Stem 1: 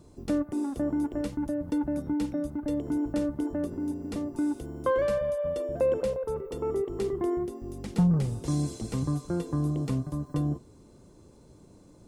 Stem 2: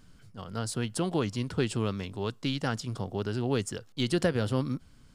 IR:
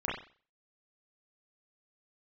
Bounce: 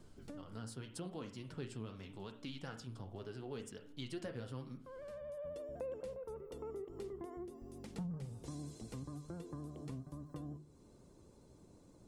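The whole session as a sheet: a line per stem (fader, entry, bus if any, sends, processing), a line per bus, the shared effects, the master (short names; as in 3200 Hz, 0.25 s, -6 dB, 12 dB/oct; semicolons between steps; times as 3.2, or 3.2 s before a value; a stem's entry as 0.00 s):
-7.0 dB, 0.00 s, no send, notches 50/100/150/200/250/300/350 Hz; auto duck -21 dB, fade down 0.75 s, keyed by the second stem
-5.5 dB, 0.00 s, send -12.5 dB, flange 0.82 Hz, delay 3.7 ms, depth 5.7 ms, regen +46%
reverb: on, pre-delay 31 ms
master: vibrato 12 Hz 49 cents; compressor 2:1, threshold -50 dBFS, peak gain reduction 13 dB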